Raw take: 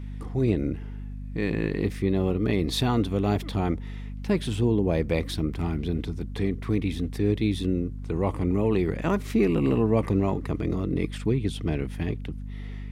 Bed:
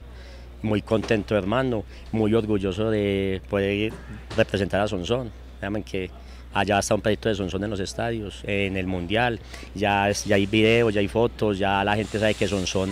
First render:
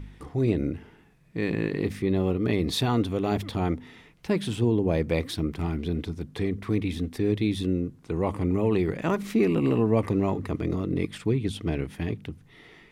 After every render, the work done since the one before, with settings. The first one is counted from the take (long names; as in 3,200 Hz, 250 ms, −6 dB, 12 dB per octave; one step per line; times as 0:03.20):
hum removal 50 Hz, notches 5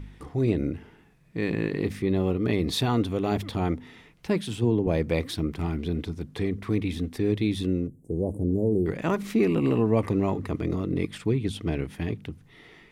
0:04.41–0:04.87: multiband upward and downward expander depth 40%
0:07.87–0:08.86: inverse Chebyshev band-stop filter 1,400–3,800 Hz, stop band 60 dB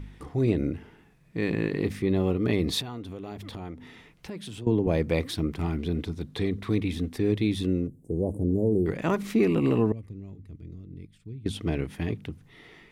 0:02.81–0:04.67: downward compressor 4 to 1, threshold −36 dBFS
0:06.14–0:06.80: parametric band 3,800 Hz +8.5 dB 0.29 octaves
0:09.92–0:11.46: guitar amp tone stack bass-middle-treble 10-0-1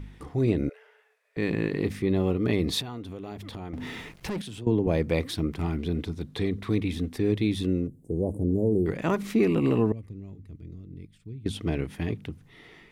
0:00.69–0:01.37: Chebyshev high-pass with heavy ripple 420 Hz, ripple 6 dB
0:03.73–0:04.42: leveller curve on the samples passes 3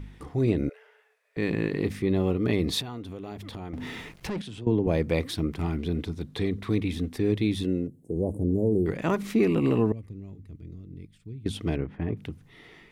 0:04.27–0:04.85: high-frequency loss of the air 51 metres
0:07.64–0:08.16: notch comb filter 1,200 Hz
0:11.76–0:12.17: low-pass filter 1,500 Hz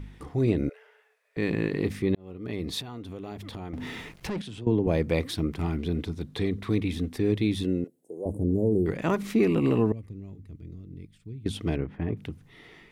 0:02.15–0:03.17: fade in
0:07.84–0:08.26: high-pass filter 570 Hz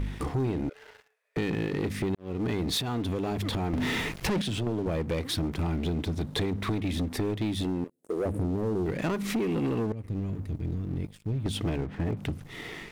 downward compressor 16 to 1, threshold −33 dBFS, peak gain reduction 16 dB
leveller curve on the samples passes 3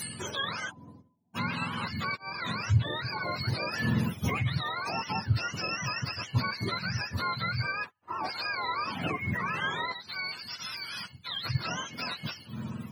frequency axis turned over on the octave scale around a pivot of 660 Hz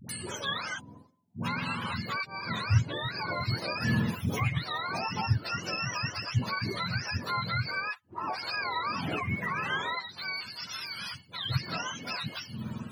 all-pass dispersion highs, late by 93 ms, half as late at 510 Hz
tape wow and flutter 25 cents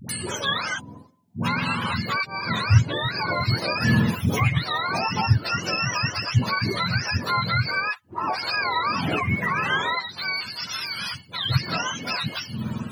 level +8 dB